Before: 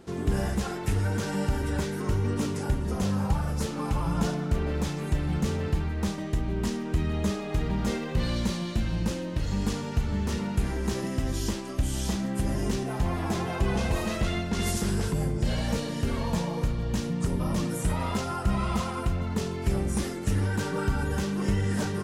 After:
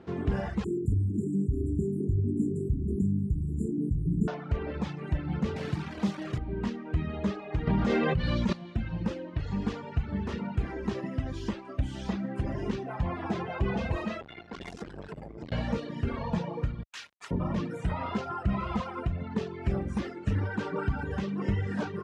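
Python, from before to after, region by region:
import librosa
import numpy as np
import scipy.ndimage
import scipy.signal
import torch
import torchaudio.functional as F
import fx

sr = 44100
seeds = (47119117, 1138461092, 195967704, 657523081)

y = fx.chain(x, sr, fx.brickwall_bandstop(low_hz=430.0, high_hz=7000.0),
    fx.high_shelf(hz=7000.0, db=6.0),
    fx.env_flatten(amount_pct=50), at=(0.64, 4.28))
y = fx.chain(y, sr, fx.highpass(hz=110.0, slope=24),
    fx.quant_dither(seeds[0], bits=6, dither='none'),
    fx.bass_treble(bass_db=4, treble_db=6), at=(5.56, 6.38))
y = fx.chain(y, sr, fx.lowpass(hz=11000.0, slope=12),
    fx.hum_notches(base_hz=50, count=2),
    fx.env_flatten(amount_pct=100), at=(7.67, 8.53))
y = fx.chain(y, sr, fx.peak_eq(hz=120.0, db=-8.5, octaves=2.9),
    fx.transformer_sat(knee_hz=580.0), at=(14.2, 15.52))
y = fx.chain(y, sr, fx.highpass(hz=1300.0, slope=12),
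    fx.tilt_eq(slope=3.0),
    fx.quant_dither(seeds[1], bits=6, dither='none'), at=(16.83, 17.31))
y = scipy.signal.sosfilt(scipy.signal.butter(2, 54.0, 'highpass', fs=sr, output='sos'), y)
y = fx.dereverb_blind(y, sr, rt60_s=1.5)
y = scipy.signal.sosfilt(scipy.signal.butter(2, 2700.0, 'lowpass', fs=sr, output='sos'), y)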